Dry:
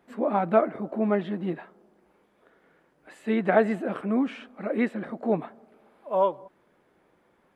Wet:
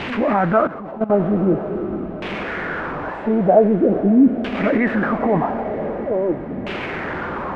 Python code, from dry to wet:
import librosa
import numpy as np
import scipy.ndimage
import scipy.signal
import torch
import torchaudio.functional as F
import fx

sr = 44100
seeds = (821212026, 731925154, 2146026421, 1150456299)

p1 = x + 0.5 * 10.0 ** (-32.0 / 20.0) * np.sign(x)
p2 = fx.peak_eq(p1, sr, hz=81.0, db=5.0, octaves=1.7)
p3 = fx.over_compress(p2, sr, threshold_db=-26.0, ratio=-1.0)
p4 = p2 + (p3 * 10.0 ** (3.0 / 20.0))
p5 = fx.filter_lfo_lowpass(p4, sr, shape='saw_down', hz=0.45, low_hz=220.0, high_hz=2900.0, q=2.7)
p6 = p5 + fx.echo_diffused(p5, sr, ms=487, feedback_pct=63, wet_db=-14, dry=0)
p7 = fx.level_steps(p6, sr, step_db=15, at=(0.67, 1.1))
y = p7 * 10.0 ** (-1.0 / 20.0)